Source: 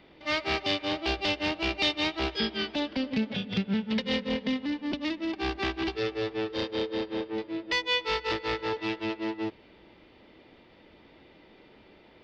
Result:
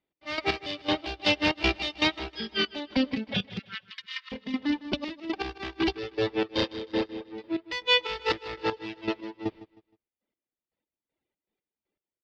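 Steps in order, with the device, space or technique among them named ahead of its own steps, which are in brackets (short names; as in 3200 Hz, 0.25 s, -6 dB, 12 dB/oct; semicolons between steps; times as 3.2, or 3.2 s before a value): reverb removal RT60 1.4 s; gate -49 dBFS, range -36 dB; 3.59–4.32 Chebyshev high-pass 1100 Hz, order 6; trance gate with a delay (step gate "x..x...x..xx." 119 bpm -12 dB; feedback echo 0.156 s, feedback 31%, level -17 dB); gain +6.5 dB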